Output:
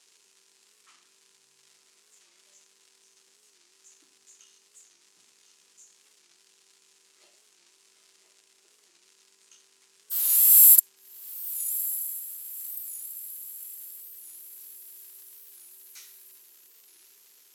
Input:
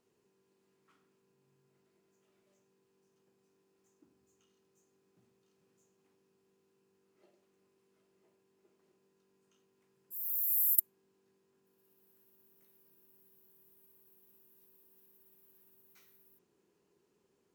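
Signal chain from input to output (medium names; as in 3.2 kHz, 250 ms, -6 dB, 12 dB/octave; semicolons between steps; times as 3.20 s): treble shelf 6.3 kHz +9.5 dB; crackle 300 per s -61 dBFS; in parallel at -7 dB: crossover distortion -38 dBFS; on the sum: frequency weighting ITU-R 468; on a send: echo that smears into a reverb 1148 ms, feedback 50%, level -15.5 dB; on the sum: loudness maximiser +7.5 dB; warped record 45 rpm, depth 160 cents; trim -1 dB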